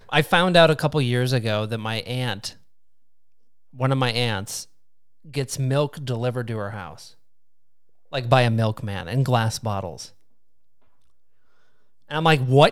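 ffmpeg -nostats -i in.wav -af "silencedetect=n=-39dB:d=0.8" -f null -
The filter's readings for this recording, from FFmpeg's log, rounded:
silence_start: 2.53
silence_end: 3.74 | silence_duration: 1.21
silence_start: 7.09
silence_end: 8.12 | silence_duration: 1.04
silence_start: 10.08
silence_end: 12.10 | silence_duration: 2.03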